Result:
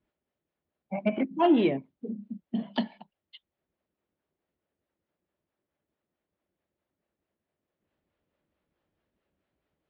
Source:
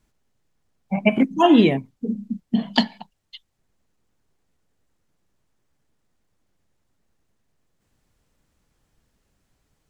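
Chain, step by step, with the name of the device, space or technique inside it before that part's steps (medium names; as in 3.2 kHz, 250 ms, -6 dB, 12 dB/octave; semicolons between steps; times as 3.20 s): guitar amplifier with harmonic tremolo (harmonic tremolo 4.6 Hz, depth 50%, crossover 410 Hz; saturation -9.5 dBFS, distortion -19 dB; cabinet simulation 79–3500 Hz, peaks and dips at 120 Hz -9 dB, 350 Hz +6 dB, 590 Hz +7 dB); trim -7 dB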